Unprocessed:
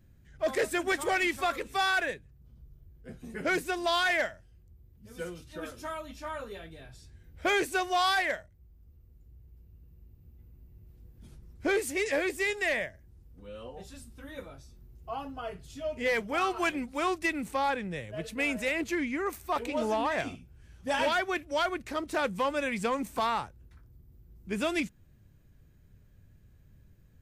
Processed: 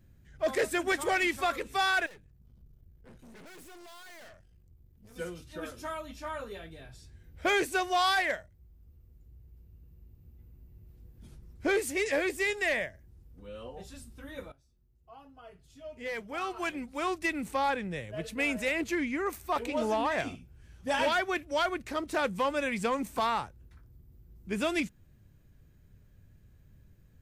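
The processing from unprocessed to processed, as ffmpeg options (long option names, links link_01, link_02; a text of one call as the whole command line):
ffmpeg -i in.wav -filter_complex "[0:a]asettb=1/sr,asplit=3[link_01][link_02][link_03];[link_01]atrim=end=2.064[link_04];[link_02]atrim=start=2.06:end=5.16,asetpts=PTS-STARTPTS,afade=type=in:duration=0.004:curve=qsin,afade=type=out:start_time=3.096:duration=0.004:curve=qsin,aeval=exprs='(tanh(316*val(0)+0.6)-tanh(0.6))/316':channel_layout=same[link_05];[link_03]atrim=start=5.156[link_06];[link_04][link_05]acrossfade=duration=0.004:curve1=hsin:curve2=qsin[link_07];[link_07][link_06]acrossfade=duration=0.004:curve1=qsin:curve2=hsin,asplit=2[link_08][link_09];[link_08]atrim=end=14.52,asetpts=PTS-STARTPTS,afade=type=out:start_time=14.516:duration=0.004:curve=hsin:silence=0.141254[link_10];[link_09]atrim=start=14.52,asetpts=PTS-STARTPTS,afade=type=in:duration=2.98:curve=qua:silence=0.141254[link_11];[link_10][link_11]concat=n=2:v=0:a=1" out.wav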